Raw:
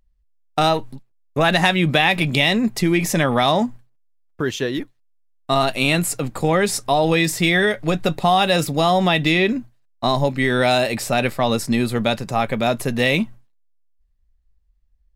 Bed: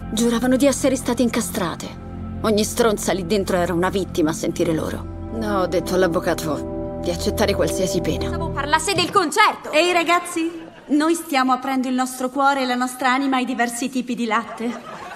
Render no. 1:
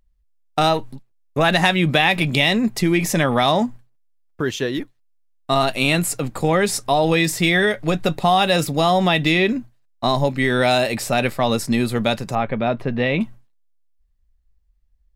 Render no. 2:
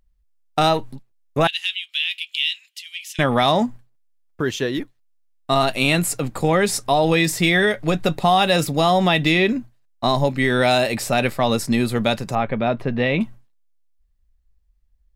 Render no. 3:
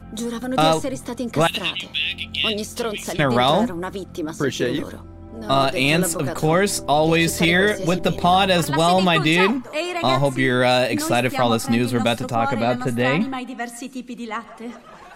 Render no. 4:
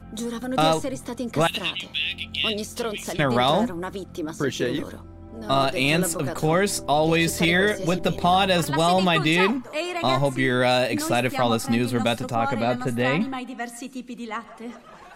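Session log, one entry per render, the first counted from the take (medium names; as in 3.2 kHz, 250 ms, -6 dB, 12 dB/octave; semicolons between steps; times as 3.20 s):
12.35–13.21 s: distance through air 340 m
1.47–3.19 s: ladder high-pass 2.8 kHz, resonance 75%
add bed -8.5 dB
trim -3 dB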